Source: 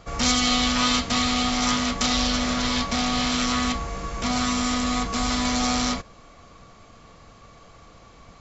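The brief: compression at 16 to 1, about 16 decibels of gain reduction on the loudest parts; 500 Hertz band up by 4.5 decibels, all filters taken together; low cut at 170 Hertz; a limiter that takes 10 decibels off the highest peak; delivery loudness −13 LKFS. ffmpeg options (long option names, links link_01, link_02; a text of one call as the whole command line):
ffmpeg -i in.wav -af "highpass=170,equalizer=frequency=500:width_type=o:gain=5.5,acompressor=threshold=-34dB:ratio=16,volume=28dB,alimiter=limit=-3.5dB:level=0:latency=1" out.wav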